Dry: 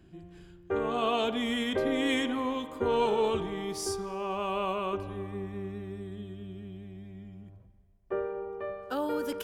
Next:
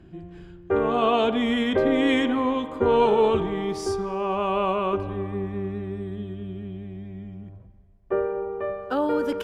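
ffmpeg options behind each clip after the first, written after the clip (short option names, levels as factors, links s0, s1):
-af "aemphasis=mode=reproduction:type=75kf,volume=2.51"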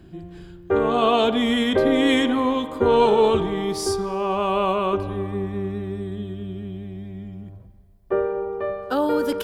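-af "aexciter=amount=2.4:drive=3.6:freq=3600,volume=1.33"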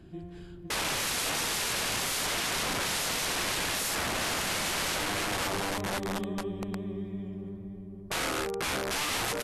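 -filter_complex "[0:a]asplit=2[s0][s1];[s1]adelay=514,lowpass=f=990:p=1,volume=0.668,asplit=2[s2][s3];[s3]adelay=514,lowpass=f=990:p=1,volume=0.54,asplit=2[s4][s5];[s5]adelay=514,lowpass=f=990:p=1,volume=0.54,asplit=2[s6][s7];[s7]adelay=514,lowpass=f=990:p=1,volume=0.54,asplit=2[s8][s9];[s9]adelay=514,lowpass=f=990:p=1,volume=0.54,asplit=2[s10][s11];[s11]adelay=514,lowpass=f=990:p=1,volume=0.54,asplit=2[s12][s13];[s13]adelay=514,lowpass=f=990:p=1,volume=0.54[s14];[s0][s2][s4][s6][s8][s10][s12][s14]amix=inputs=8:normalize=0,aeval=exprs='(mod(11.9*val(0)+1,2)-1)/11.9':c=same,volume=0.596" -ar 32000 -c:a libvorbis -b:a 48k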